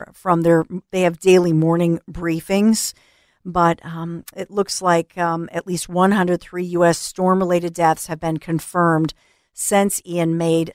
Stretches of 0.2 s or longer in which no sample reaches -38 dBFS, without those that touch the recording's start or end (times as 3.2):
2.97–3.46
9.12–9.57